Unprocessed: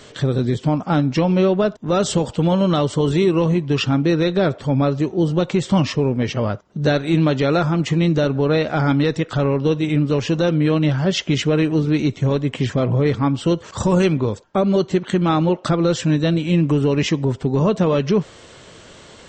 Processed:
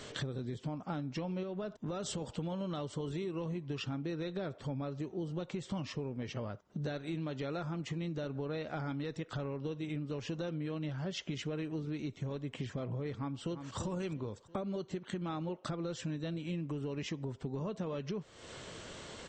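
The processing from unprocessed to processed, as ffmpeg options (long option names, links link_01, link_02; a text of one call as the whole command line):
ffmpeg -i in.wav -filter_complex "[0:a]asettb=1/sr,asplit=3[link_01][link_02][link_03];[link_01]atrim=end=1.434[link_04];[link_02]atrim=start=1.43:end=2.22,asetpts=PTS-STARTPTS,afade=type=in:duration=0.004:curve=qsin,afade=type=out:start_time=0.786:duration=0.004:curve=qsin,acompressor=threshold=-19dB:ratio=2.5:attack=3.2:release=140:knee=1:detection=peak[link_05];[link_03]atrim=start=2.216[link_06];[link_04][link_05]acrossfade=duration=0.004:curve1=hsin:curve2=qsin[link_07];[link_07][link_06]acrossfade=duration=0.004:curve1=qsin:curve2=hsin,asplit=2[link_08][link_09];[link_09]afade=type=in:start_time=13.17:duration=0.01,afade=type=out:start_time=13.79:duration=0.01,aecho=0:1:340|680|1020:0.281838|0.0704596|0.0176149[link_10];[link_08][link_10]amix=inputs=2:normalize=0,acompressor=threshold=-32dB:ratio=6,volume=-5dB" out.wav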